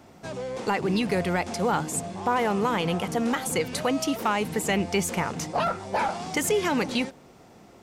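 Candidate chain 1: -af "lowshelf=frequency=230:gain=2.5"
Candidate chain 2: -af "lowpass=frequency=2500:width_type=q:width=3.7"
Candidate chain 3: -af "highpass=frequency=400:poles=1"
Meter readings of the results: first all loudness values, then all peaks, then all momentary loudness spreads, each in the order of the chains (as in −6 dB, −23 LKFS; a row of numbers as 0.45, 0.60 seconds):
−26.0, −24.0, −28.5 LKFS; −13.5, −8.0, −12.5 dBFS; 5, 5, 5 LU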